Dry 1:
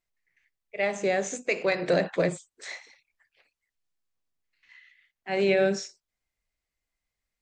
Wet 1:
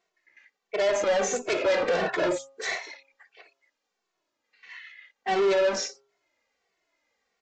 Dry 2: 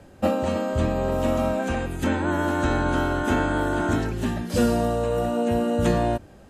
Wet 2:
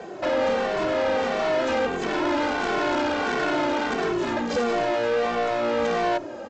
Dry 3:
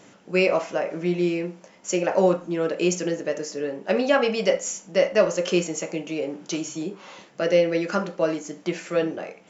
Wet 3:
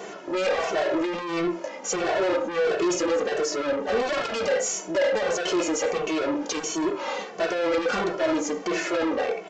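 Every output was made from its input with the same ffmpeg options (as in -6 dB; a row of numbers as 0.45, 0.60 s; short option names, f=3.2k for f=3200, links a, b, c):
-filter_complex "[0:a]equalizer=f=340:t=o:w=2.1:g=7,asplit=2[a][b];[b]highpass=f=720:p=1,volume=27dB,asoftclip=type=tanh:threshold=-6.5dB[c];[a][c]amix=inputs=2:normalize=0,lowpass=f=1.2k:p=1,volume=-6dB,aresample=16000,asoftclip=type=tanh:threshold=-18dB,aresample=44100,bass=f=250:g=-9,treble=f=4k:g=6,bandreject=f=136.3:t=h:w=4,bandreject=f=272.6:t=h:w=4,bandreject=f=408.9:t=h:w=4,bandreject=f=545.2:t=h:w=4,bandreject=f=681.5:t=h:w=4,bandreject=f=817.8:t=h:w=4,bandreject=f=954.1:t=h:w=4,bandreject=f=1.0904k:t=h:w=4,bandreject=f=1.2267k:t=h:w=4,bandreject=f=1.363k:t=h:w=4,asplit=2[d][e];[e]adelay=2.2,afreqshift=-1.5[f];[d][f]amix=inputs=2:normalize=1"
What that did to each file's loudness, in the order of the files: +0.5, 0.0, -1.5 LU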